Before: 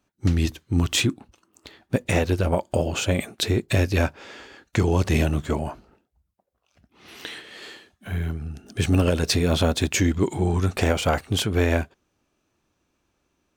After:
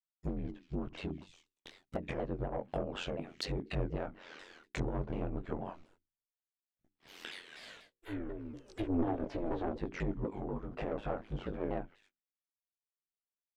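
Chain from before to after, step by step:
low-shelf EQ 200 Hz +7.5 dB
delay with a high-pass on its return 81 ms, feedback 74%, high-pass 2,300 Hz, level −23 dB
noise gate −50 dBFS, range −35 dB
mains-hum notches 60/120/180/240/300/360 Hz
treble cut that deepens with the level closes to 940 Hz, closed at −15.5 dBFS
soft clipping −12.5 dBFS, distortion −16 dB
chorus effect 0.94 Hz, delay 16.5 ms, depth 4.1 ms
ring modulation 43 Hz, from 0:07.56 190 Hz, from 0:09.77 48 Hz
parametric band 91 Hz −11.5 dB 2.6 octaves
pitch modulation by a square or saw wave saw down 4.1 Hz, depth 250 cents
level −4 dB

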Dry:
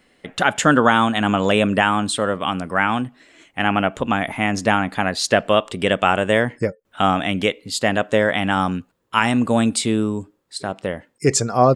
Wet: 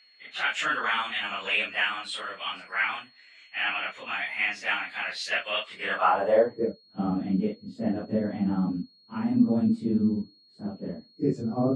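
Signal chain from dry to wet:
random phases in long frames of 100 ms
band-pass filter sweep 2,400 Hz → 220 Hz, 0:05.65–0:06.86
steady tone 4,300 Hz −57 dBFS

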